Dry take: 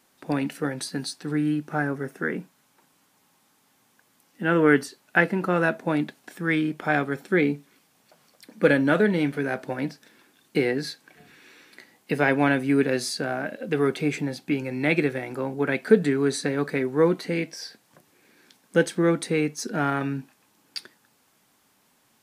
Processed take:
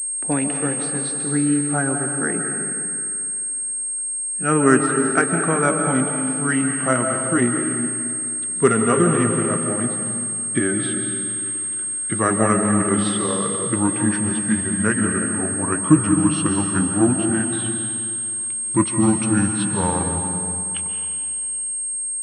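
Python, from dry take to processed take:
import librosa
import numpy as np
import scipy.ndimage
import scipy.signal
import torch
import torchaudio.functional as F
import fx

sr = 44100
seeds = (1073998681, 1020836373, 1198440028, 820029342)

y = fx.pitch_glide(x, sr, semitones=-8.5, runs='starting unshifted')
y = fx.rev_freeverb(y, sr, rt60_s=2.6, hf_ratio=0.9, predelay_ms=105, drr_db=3.0)
y = fx.pwm(y, sr, carrier_hz=8500.0)
y = F.gain(torch.from_numpy(y), 3.5).numpy()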